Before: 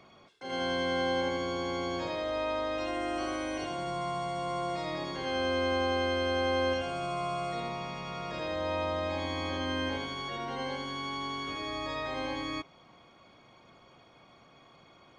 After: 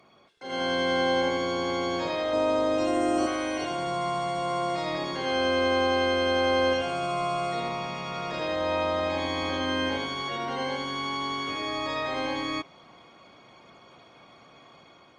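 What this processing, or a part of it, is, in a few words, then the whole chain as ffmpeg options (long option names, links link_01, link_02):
video call: -filter_complex "[0:a]asettb=1/sr,asplit=3[link_01][link_02][link_03];[link_01]atrim=end=2.334[link_04];[link_02]atrim=start=2.33:end=3.27,asetpts=PTS-STARTPTS,afade=type=in:duration=0.004:curve=qsin,afade=type=out:start_time=0.936:duration=0.004:curve=qsin,equalizer=frequency=125:width_type=o:width=1:gain=7,equalizer=frequency=250:width_type=o:width=1:gain=6,equalizer=frequency=500:width_type=o:width=1:gain=3,equalizer=frequency=2000:width_type=o:width=1:gain=-5,equalizer=frequency=4000:width_type=o:width=1:gain=-3,equalizer=frequency=8000:width_type=o:width=1:gain=8[link_05];[link_03]atrim=start=3.266[link_06];[link_04][link_05]acrossfade=duration=0.004:curve1=hsin:curve2=qsin[link_07];[link_07][link_06]acrossfade=duration=0.004:curve1=qsin:curve2=hsin,highpass=frequency=140:poles=1,dynaudnorm=framelen=220:gausssize=5:maxgain=5.5dB" -ar 48000 -c:a libopus -b:a 32k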